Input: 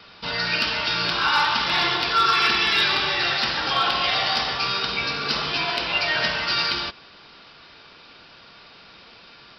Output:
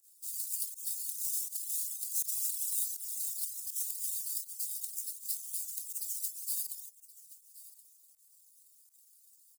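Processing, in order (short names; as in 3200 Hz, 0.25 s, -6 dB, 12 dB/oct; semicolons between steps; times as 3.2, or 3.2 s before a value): half-waves squared off; reverb removal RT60 0.7 s; inverse Chebyshev high-pass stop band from 1400 Hz, stop band 80 dB; reverb removal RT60 0.86 s; pump 81 bpm, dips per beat 1, -21 dB, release 92 ms; crackle 58/s -64 dBFS; echo 1.074 s -18 dB; gain -4 dB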